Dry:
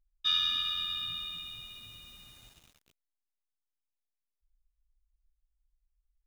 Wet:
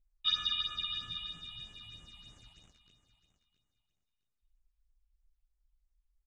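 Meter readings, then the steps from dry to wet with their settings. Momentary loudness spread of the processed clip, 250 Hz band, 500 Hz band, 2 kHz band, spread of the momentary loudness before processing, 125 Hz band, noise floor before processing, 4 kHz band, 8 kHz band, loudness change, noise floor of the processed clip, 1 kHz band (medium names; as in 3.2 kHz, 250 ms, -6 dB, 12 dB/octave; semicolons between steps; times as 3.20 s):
20 LU, -0.5 dB, -2.0 dB, -4.0 dB, 20 LU, +1.0 dB, under -85 dBFS, -3.5 dB, -5.0 dB, -4.0 dB, -84 dBFS, -3.0 dB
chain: low-pass 7.8 kHz 24 dB/octave; phase shifter stages 6, 3.1 Hz, lowest notch 390–4600 Hz; feedback delay 665 ms, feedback 22%, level -13.5 dB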